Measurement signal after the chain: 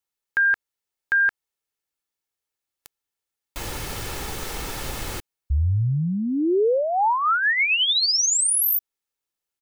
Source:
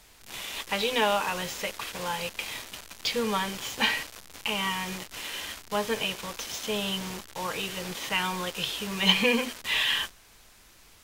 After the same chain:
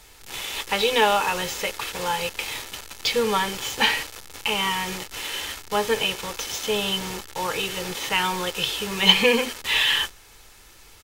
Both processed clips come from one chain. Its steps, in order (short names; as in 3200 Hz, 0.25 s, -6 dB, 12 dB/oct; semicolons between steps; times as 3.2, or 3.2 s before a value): comb 2.3 ms, depth 34%; gain +5 dB